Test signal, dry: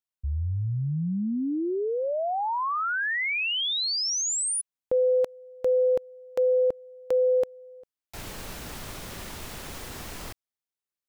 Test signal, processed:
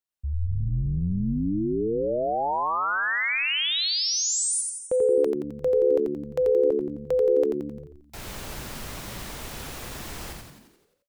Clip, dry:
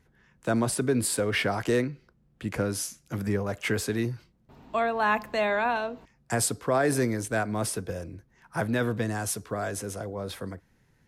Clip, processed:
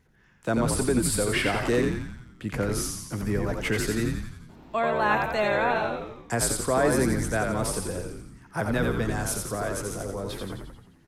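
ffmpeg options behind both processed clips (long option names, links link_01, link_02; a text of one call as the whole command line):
ffmpeg -i in.wav -filter_complex "[0:a]asplit=9[link_01][link_02][link_03][link_04][link_05][link_06][link_07][link_08][link_09];[link_02]adelay=87,afreqshift=-72,volume=-4dB[link_10];[link_03]adelay=174,afreqshift=-144,volume=-8.9dB[link_11];[link_04]adelay=261,afreqshift=-216,volume=-13.8dB[link_12];[link_05]adelay=348,afreqshift=-288,volume=-18.6dB[link_13];[link_06]adelay=435,afreqshift=-360,volume=-23.5dB[link_14];[link_07]adelay=522,afreqshift=-432,volume=-28.4dB[link_15];[link_08]adelay=609,afreqshift=-504,volume=-33.3dB[link_16];[link_09]adelay=696,afreqshift=-576,volume=-38.2dB[link_17];[link_01][link_10][link_11][link_12][link_13][link_14][link_15][link_16][link_17]amix=inputs=9:normalize=0" out.wav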